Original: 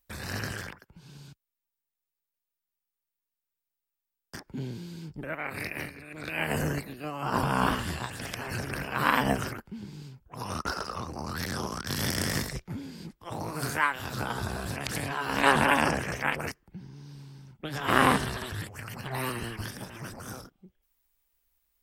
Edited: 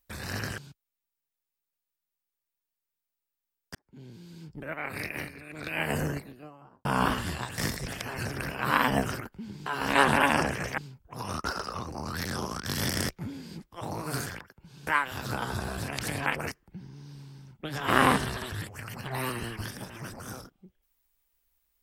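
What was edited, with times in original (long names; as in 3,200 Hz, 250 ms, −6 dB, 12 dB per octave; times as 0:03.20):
0:00.58–0:01.19: move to 0:13.75
0:04.36–0:05.47: fade in
0:06.47–0:07.46: fade out and dull
0:12.30–0:12.58: move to 0:08.19
0:15.14–0:16.26: move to 0:09.99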